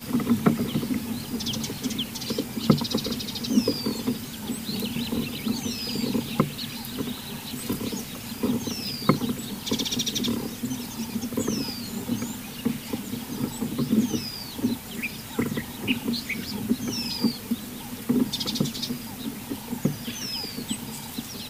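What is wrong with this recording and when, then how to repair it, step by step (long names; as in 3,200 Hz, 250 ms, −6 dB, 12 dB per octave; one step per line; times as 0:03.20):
surface crackle 31 per second −36 dBFS
0:08.87: click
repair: click removal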